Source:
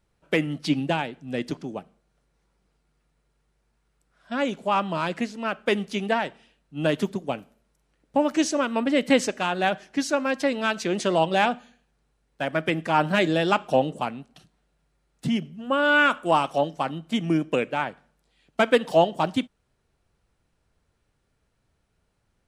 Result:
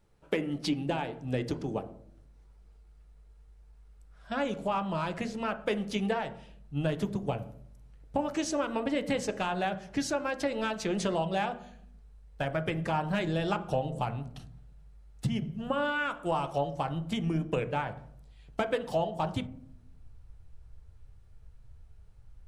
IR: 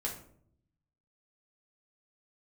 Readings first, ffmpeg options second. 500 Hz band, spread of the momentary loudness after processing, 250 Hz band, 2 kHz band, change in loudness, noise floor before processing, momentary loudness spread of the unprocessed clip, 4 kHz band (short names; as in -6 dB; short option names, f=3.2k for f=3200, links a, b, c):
-7.5 dB, 8 LU, -7.0 dB, -10.5 dB, -7.5 dB, -72 dBFS, 11 LU, -9.0 dB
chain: -filter_complex "[0:a]asubboost=boost=10:cutoff=84,acompressor=threshold=-31dB:ratio=4,asplit=2[a][b];[b]lowpass=1.3k[c];[1:a]atrim=start_sample=2205[d];[c][d]afir=irnorm=-1:irlink=0,volume=-4.5dB[e];[a][e]amix=inputs=2:normalize=0"